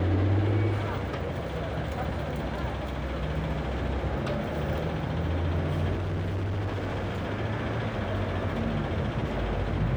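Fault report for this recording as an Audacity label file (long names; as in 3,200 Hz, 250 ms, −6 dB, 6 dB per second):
5.930000	7.250000	clipping −27 dBFS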